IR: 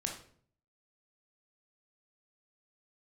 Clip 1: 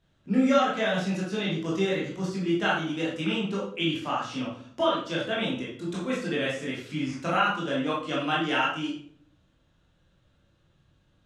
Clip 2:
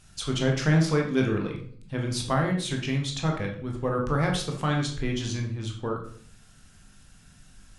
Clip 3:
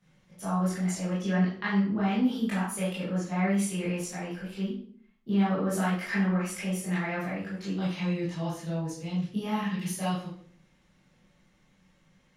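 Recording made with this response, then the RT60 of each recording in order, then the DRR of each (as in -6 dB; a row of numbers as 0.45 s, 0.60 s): 2; 0.55 s, 0.55 s, 0.55 s; -6.5 dB, 0.5 dB, -10.5 dB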